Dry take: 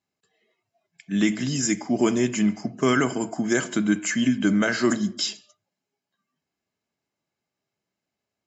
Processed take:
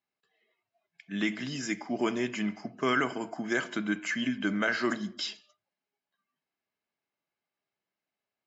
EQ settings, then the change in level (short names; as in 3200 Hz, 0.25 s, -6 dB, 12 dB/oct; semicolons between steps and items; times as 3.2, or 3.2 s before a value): air absorption 190 m; tilt shelf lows -4.5 dB, about 650 Hz; low shelf 130 Hz -8 dB; -4.5 dB